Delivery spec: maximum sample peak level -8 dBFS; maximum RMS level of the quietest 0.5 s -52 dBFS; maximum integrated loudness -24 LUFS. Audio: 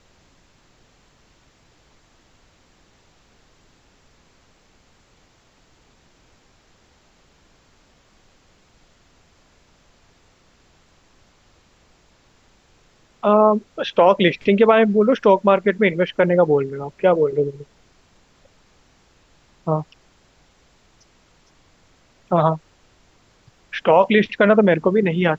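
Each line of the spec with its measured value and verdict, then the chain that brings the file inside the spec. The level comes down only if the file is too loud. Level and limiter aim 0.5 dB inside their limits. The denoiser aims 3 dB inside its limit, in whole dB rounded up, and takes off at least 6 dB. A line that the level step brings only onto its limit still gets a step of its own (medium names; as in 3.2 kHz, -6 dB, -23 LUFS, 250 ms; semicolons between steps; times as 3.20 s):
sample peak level -3.0 dBFS: fail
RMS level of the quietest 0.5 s -57 dBFS: pass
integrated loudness -17.5 LUFS: fail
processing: trim -7 dB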